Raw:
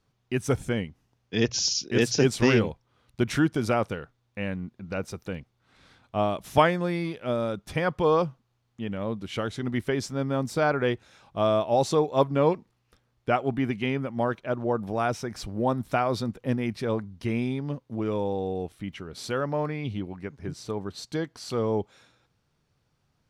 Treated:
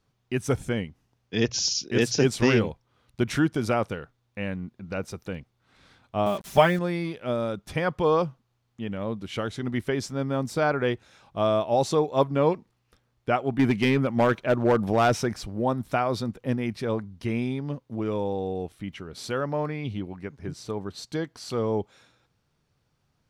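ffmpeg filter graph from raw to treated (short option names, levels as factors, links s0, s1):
-filter_complex "[0:a]asettb=1/sr,asplit=3[s0][s1][s2];[s0]atrim=end=6.264[s3];[s1]atrim=start=6.26:end=6.79,asetpts=PTS-STARTPTS,afade=t=in:d=0.004:c=qsin,afade=t=out:st=0.526:d=0.004:c=qsin,aecho=1:1:5.1:0.65,atrim=end_sample=23373,acrusher=bits=6:mix=0:aa=0.5[s4];[s2]atrim=start=6.786[s5];[s3][s4]acrossfade=d=0.004:c1=hsin:c2=qsin[s6];[s6][s5]acrossfade=d=0.004:c1=qsin:c2=hsin,asettb=1/sr,asplit=3[s7][s8][s9];[s7]atrim=end=13.594[s10];[s8]atrim=start=13.59:end=15.34,asetpts=PTS-STARTPTS,afade=t=in:d=0.004:c=qsin,afade=t=out:st=1.746:d=0.004:c=qsin,acontrast=75,asoftclip=type=hard:threshold=0.188[s11];[s9]atrim=start=15.336[s12];[s10][s11]acrossfade=d=0.004:c1=hsin:c2=qsin[s13];[s13][s12]acrossfade=d=0.004:c1=qsin:c2=hsin"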